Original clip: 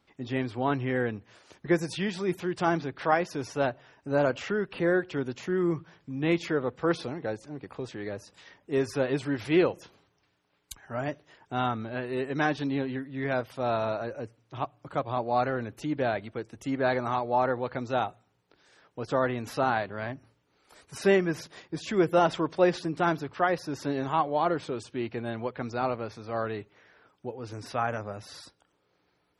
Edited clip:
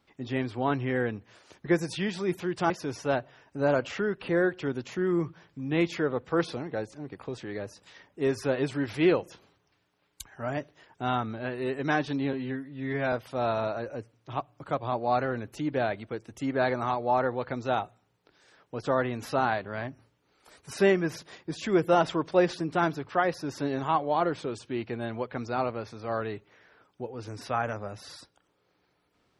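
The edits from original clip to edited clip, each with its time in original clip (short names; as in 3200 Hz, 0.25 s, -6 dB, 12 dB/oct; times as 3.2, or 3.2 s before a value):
2.7–3.21 cut
12.84–13.37 stretch 1.5×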